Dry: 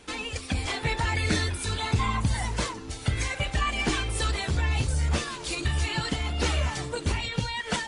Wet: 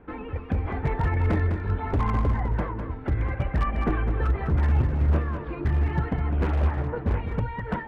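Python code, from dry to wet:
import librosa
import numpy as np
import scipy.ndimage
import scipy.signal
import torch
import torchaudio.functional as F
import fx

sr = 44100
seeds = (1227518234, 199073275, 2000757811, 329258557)

y = scipy.signal.sosfilt(scipy.signal.butter(4, 1700.0, 'lowpass', fs=sr, output='sos'), x)
y = fx.low_shelf(y, sr, hz=430.0, db=6.5)
y = 10.0 ** (-15.5 / 20.0) * (np.abs((y / 10.0 ** (-15.5 / 20.0) + 3.0) % 4.0 - 2.0) - 1.0)
y = y + 10.0 ** (-7.5 / 20.0) * np.pad(y, (int(204 * sr / 1000.0), 0))[:len(y)]
y = fx.doppler_dist(y, sr, depth_ms=0.54, at=(6.3, 7.22))
y = y * 10.0 ** (-1.5 / 20.0)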